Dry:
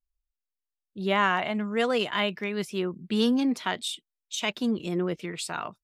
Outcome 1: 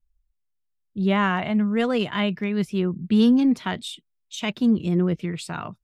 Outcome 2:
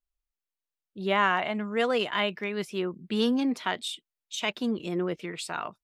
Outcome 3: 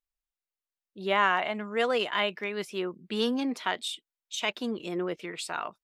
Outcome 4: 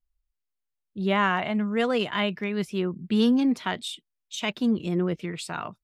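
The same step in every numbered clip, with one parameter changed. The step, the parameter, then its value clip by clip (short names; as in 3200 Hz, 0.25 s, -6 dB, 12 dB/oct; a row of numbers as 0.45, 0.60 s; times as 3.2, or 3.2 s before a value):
tone controls, bass: +14, -4, -12, +6 dB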